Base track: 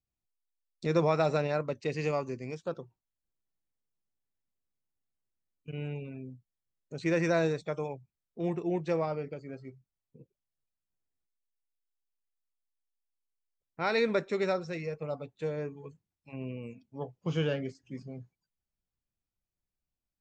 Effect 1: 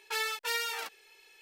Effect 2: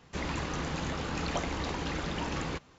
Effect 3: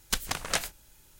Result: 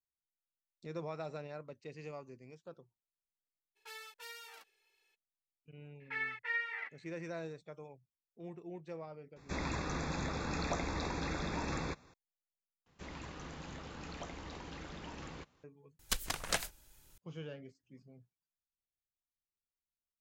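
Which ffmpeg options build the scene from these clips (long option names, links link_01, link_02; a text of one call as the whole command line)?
ffmpeg -i bed.wav -i cue0.wav -i cue1.wav -i cue2.wav -filter_complex "[1:a]asplit=2[link_01][link_02];[2:a]asplit=2[link_03][link_04];[0:a]volume=-15.5dB[link_05];[link_02]lowpass=frequency=2000:width_type=q:width=14[link_06];[link_03]asuperstop=centerf=3000:order=8:qfactor=4.8[link_07];[3:a]aphaser=in_gain=1:out_gain=1:delay=3.5:decay=0.25:speed=1.8:type=triangular[link_08];[link_05]asplit=3[link_09][link_10][link_11];[link_09]atrim=end=12.864[link_12];[link_04]atrim=end=2.78,asetpts=PTS-STARTPTS,volume=-13dB[link_13];[link_10]atrim=start=15.636:end=15.994[link_14];[link_08]atrim=end=1.19,asetpts=PTS-STARTPTS,volume=-6dB[link_15];[link_11]atrim=start=17.176[link_16];[link_01]atrim=end=1.41,asetpts=PTS-STARTPTS,volume=-17dB,afade=type=in:duration=0.02,afade=type=out:start_time=1.39:duration=0.02,adelay=3750[link_17];[link_06]atrim=end=1.41,asetpts=PTS-STARTPTS,volume=-14dB,afade=type=in:duration=0.004:curve=hsin,afade=type=out:start_time=1.406:duration=0.004:curve=hsin,adelay=6000[link_18];[link_07]atrim=end=2.78,asetpts=PTS-STARTPTS,volume=-3.5dB,afade=type=in:duration=0.004:curve=hsin,afade=type=out:start_time=2.776:duration=0.004:curve=hsin,adelay=9360[link_19];[link_12][link_13]acrossfade=duration=0.004:curve1=hsin:curve2=hsin[link_20];[link_20][link_14]acrossfade=duration=0.004:curve1=hsin:curve2=hsin[link_21];[link_21][link_15]acrossfade=duration=0.004:curve1=hsin:curve2=hsin[link_22];[link_22][link_16]acrossfade=duration=0.004:curve1=hsin:curve2=hsin[link_23];[link_23][link_17][link_18][link_19]amix=inputs=4:normalize=0" out.wav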